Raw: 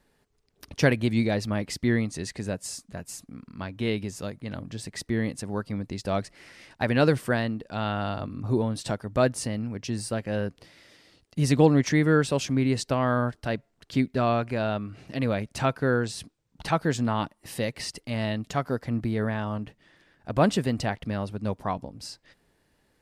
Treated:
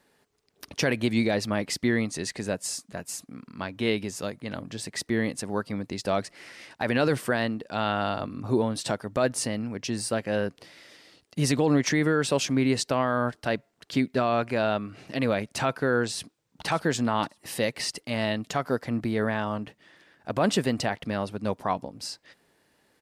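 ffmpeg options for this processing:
-filter_complex "[0:a]asplit=2[s0][s1];[s1]afade=t=in:st=16.13:d=0.01,afade=t=out:st=16.68:d=0.01,aecho=0:1:580|1160:0.223872|0.0335808[s2];[s0][s2]amix=inputs=2:normalize=0,highpass=f=260:p=1,alimiter=limit=0.141:level=0:latency=1:release=42,volume=1.58"

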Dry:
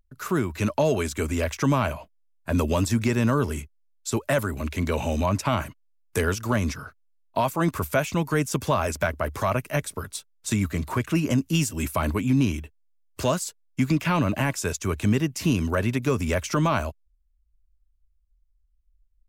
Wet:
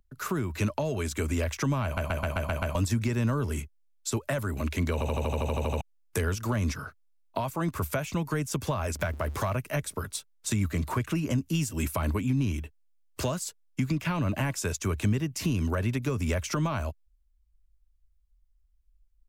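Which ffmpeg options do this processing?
-filter_complex "[0:a]asettb=1/sr,asplit=3[s0][s1][s2];[s0]atrim=end=8.994[s3];[s1]atrim=start=8.99:end=9.56,asetpts=PTS-STARTPTS,afade=t=in:d=0.004:c=qsin,afade=t=out:st=0.566:d=0.004:c=qsin,aeval=exprs='val(0)+0.5*0.01*sgn(val(0))':c=same[s4];[s2]atrim=start=9.556[s5];[s3][s4]acrossfade=d=0.004:c1=hsin:c2=qsin[s6];[s6][s5]acrossfade=d=0.004:c1=qsin:c2=hsin,asplit=19[s7][s8][s9][s10][s11][s12][s13][s14][s15][s16][s17][s18][s19][s20][s21][s22][s23][s24][s25];[s7]atrim=end=1.972[s26];[s8]atrim=start=1.838:end=1.972[s27];[s9]atrim=start=1.838:end=1.972[s28];[s10]atrim=start=1.838:end=1.972[s29];[s11]atrim=start=1.838:end=1.972[s30];[s12]atrim=start=1.838:end=1.972[s31];[s13]atrim=start=1.838:end=1.972[s32];[s14]atrim=start=2.748:end=5.012[s33];[s15]atrim=start=4.928:end=5.012[s34];[s16]atrim=start=4.928:end=5.012[s35];[s17]atrim=start=4.928:end=5.012[s36];[s18]atrim=start=4.928:end=5.012[s37];[s19]atrim=start=4.928:end=5.012[s38];[s20]atrim=start=4.928:end=5.012[s39];[s21]atrim=start=4.928:end=5.012[s40];[s22]atrim=start=4.928:end=5.012[s41];[s23]atrim=start=4.928:end=5.012[s42];[s24]atrim=start=4.928:end=5.012[s43];[s25]atrim=start=5.808[s44];[s26][s27]acrossfade=d=0.004:c1=hsin:c2=hsin[s45];[s45][s28]acrossfade=d=0.004:c1=hsin:c2=hsin[s46];[s46][s29]acrossfade=d=0.004:c1=hsin:c2=hsin[s47];[s47][s30]acrossfade=d=0.004:c1=hsin:c2=hsin[s48];[s48][s31]acrossfade=d=0.004:c1=hsin:c2=hsin[s49];[s49][s32]acrossfade=d=0.004:c1=hsin:c2=hsin[s50];[s50][s33]acrossfade=d=0.004:c1=hsin:c2=hsin[s51];[s51][s34]acrossfade=d=0.004:c1=hsin:c2=hsin[s52];[s52][s35]acrossfade=d=0.004:c1=hsin:c2=hsin[s53];[s53][s36]acrossfade=d=0.004:c1=hsin:c2=hsin[s54];[s54][s37]acrossfade=d=0.004:c1=hsin:c2=hsin[s55];[s55][s38]acrossfade=d=0.004:c1=hsin:c2=hsin[s56];[s56][s39]acrossfade=d=0.004:c1=hsin:c2=hsin[s57];[s57][s40]acrossfade=d=0.004:c1=hsin:c2=hsin[s58];[s58][s41]acrossfade=d=0.004:c1=hsin:c2=hsin[s59];[s59][s42]acrossfade=d=0.004:c1=hsin:c2=hsin[s60];[s60][s43]acrossfade=d=0.004:c1=hsin:c2=hsin[s61];[s61][s44]acrossfade=d=0.004:c1=hsin:c2=hsin,acrossover=split=130[s62][s63];[s63]acompressor=threshold=0.0398:ratio=6[s64];[s62][s64]amix=inputs=2:normalize=0"

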